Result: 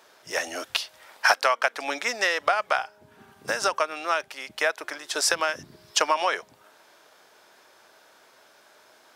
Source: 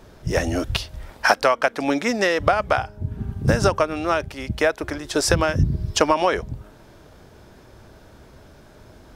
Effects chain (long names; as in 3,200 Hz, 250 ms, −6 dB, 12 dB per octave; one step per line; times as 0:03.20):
Bessel high-pass filter 970 Hz, order 2